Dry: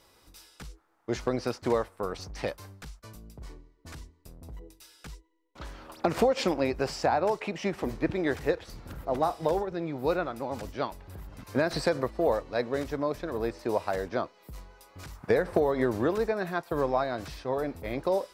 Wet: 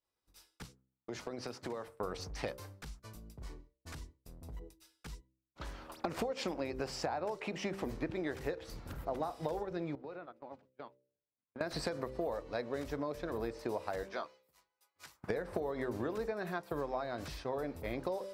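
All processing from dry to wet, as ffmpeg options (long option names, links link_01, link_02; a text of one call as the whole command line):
ffmpeg -i in.wav -filter_complex "[0:a]asettb=1/sr,asplit=3[link_01][link_02][link_03];[link_01]atrim=end=0.644[link_04];[link_02]atrim=start=0.64:end=1.88,asetpts=PTS-STARTPTS,afade=type=in:duration=0.004:curve=qsin,afade=type=out:start_time=1.236:duration=0.004:curve=qsin,highpass=frequency=98:width=0.5412,highpass=frequency=98:width=1.3066,acompressor=threshold=-34dB:ratio=6:attack=3.2:release=140:knee=1:detection=peak[link_05];[link_03]atrim=start=1.876[link_06];[link_04][link_05]acrossfade=duration=0.004:curve1=hsin:curve2=qsin[link_07];[link_07][link_06]acrossfade=duration=0.004:curve1=qsin:curve2=hsin,asettb=1/sr,asplit=3[link_08][link_09][link_10];[link_08]atrim=end=9.954[link_11];[link_09]atrim=start=9.95:end=11.61,asetpts=PTS-STARTPTS,afade=type=in:duration=0.004:curve=qsin,afade=type=out:start_time=1.656:duration=0.004:curve=qsin,agate=range=-18dB:threshold=-34dB:ratio=16:release=100:detection=peak,acompressor=threshold=-42dB:ratio=4:attack=3.2:release=140:knee=1:detection=peak,highpass=140,lowpass=3300[link_12];[link_10]atrim=start=11.606[link_13];[link_11][link_12]acrossfade=duration=0.004:curve1=hsin:curve2=qsin[link_14];[link_14][link_13]acrossfade=duration=0.004:curve1=qsin:curve2=hsin,asettb=1/sr,asplit=3[link_15][link_16][link_17];[link_15]atrim=end=14.034[link_18];[link_16]atrim=start=14.03:end=15.22,asetpts=PTS-STARTPTS,afade=type=in:duration=0.004:curve=qsin,afade=type=out:start_time=1.186:duration=0.004:curve=qsin,highpass=frequency=1200:poles=1,asplit=2[link_19][link_20];[link_20]adelay=13,volume=-9dB[link_21];[link_19][link_21]amix=inputs=2:normalize=0,atrim=end_sample=52479[link_22];[link_17]atrim=start=15.216[link_23];[link_18][link_22]acrossfade=duration=0.004:curve1=hsin:curve2=qsin[link_24];[link_24][link_23]acrossfade=duration=0.004:curve1=qsin:curve2=hsin,agate=range=-33dB:threshold=-45dB:ratio=3:detection=peak,bandreject=frequency=64.77:width_type=h:width=4,bandreject=frequency=129.54:width_type=h:width=4,bandreject=frequency=194.31:width_type=h:width=4,bandreject=frequency=259.08:width_type=h:width=4,bandreject=frequency=323.85:width_type=h:width=4,bandreject=frequency=388.62:width_type=h:width=4,bandreject=frequency=453.39:width_type=h:width=4,bandreject=frequency=518.16:width_type=h:width=4,bandreject=frequency=582.93:width_type=h:width=4,acompressor=threshold=-31dB:ratio=6,volume=-2.5dB" out.wav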